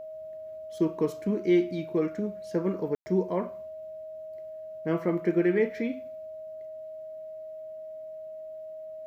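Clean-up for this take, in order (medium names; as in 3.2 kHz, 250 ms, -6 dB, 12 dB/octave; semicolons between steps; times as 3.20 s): band-stop 630 Hz, Q 30; room tone fill 2.95–3.06 s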